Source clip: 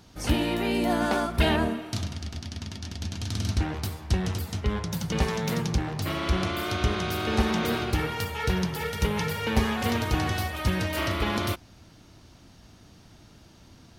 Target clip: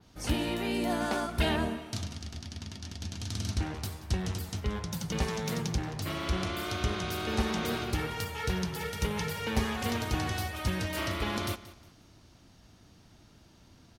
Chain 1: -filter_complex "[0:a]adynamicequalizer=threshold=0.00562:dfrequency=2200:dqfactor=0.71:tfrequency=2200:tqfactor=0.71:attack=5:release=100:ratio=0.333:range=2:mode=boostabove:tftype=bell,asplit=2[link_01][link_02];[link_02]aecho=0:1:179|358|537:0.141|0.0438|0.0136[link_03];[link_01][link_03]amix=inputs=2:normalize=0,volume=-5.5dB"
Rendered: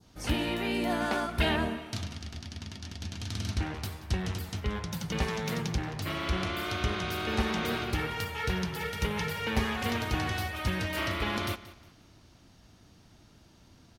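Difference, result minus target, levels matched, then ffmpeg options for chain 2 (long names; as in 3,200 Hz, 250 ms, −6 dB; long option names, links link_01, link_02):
8,000 Hz band −3.5 dB
-filter_complex "[0:a]adynamicequalizer=threshold=0.00562:dfrequency=7600:dqfactor=0.71:tfrequency=7600:tqfactor=0.71:attack=5:release=100:ratio=0.333:range=2:mode=boostabove:tftype=bell,asplit=2[link_01][link_02];[link_02]aecho=0:1:179|358|537:0.141|0.0438|0.0136[link_03];[link_01][link_03]amix=inputs=2:normalize=0,volume=-5.5dB"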